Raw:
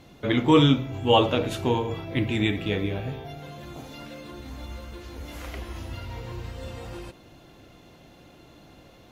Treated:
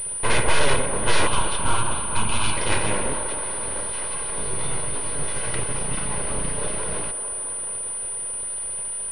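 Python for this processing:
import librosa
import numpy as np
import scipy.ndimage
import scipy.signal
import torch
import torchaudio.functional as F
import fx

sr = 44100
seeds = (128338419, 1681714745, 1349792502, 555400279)

p1 = fx.lower_of_two(x, sr, delay_ms=2.0)
p2 = fx.dynamic_eq(p1, sr, hz=2100.0, q=1.3, threshold_db=-44.0, ratio=4.0, max_db=5)
p3 = fx.fold_sine(p2, sr, drive_db=13, ceiling_db=-6.0)
p4 = p2 + (p3 * 10.0 ** (-9.0 / 20.0))
p5 = fx.vibrato(p4, sr, rate_hz=3.9, depth_cents=28.0)
p6 = np.abs(p5)
p7 = fx.fixed_phaser(p6, sr, hz=1900.0, stages=6, at=(1.27, 2.57))
p8 = fx.doubler(p7, sr, ms=21.0, db=-5.0, at=(4.34, 5.4))
p9 = p8 + fx.echo_wet_bandpass(p8, sr, ms=222, feedback_pct=78, hz=760.0, wet_db=-10.0, dry=0)
y = fx.pwm(p9, sr, carrier_hz=9400.0)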